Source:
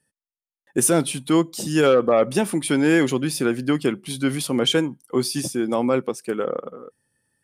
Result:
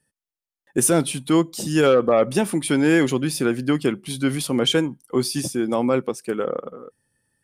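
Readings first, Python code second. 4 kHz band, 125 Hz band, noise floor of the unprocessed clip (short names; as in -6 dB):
0.0 dB, +1.5 dB, under -85 dBFS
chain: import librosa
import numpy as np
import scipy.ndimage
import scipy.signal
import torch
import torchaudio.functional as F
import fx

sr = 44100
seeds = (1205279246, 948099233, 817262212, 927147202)

y = fx.low_shelf(x, sr, hz=69.0, db=7.5)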